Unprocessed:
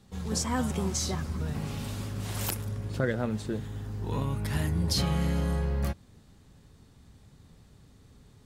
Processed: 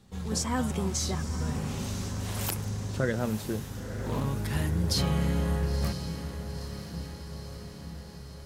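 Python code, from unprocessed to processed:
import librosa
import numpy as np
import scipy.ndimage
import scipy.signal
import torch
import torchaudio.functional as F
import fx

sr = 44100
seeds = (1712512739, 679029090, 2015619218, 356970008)

y = fx.echo_diffused(x, sr, ms=975, feedback_pct=63, wet_db=-10.0)
y = fx.doppler_dist(y, sr, depth_ms=0.33, at=(3.8, 4.25))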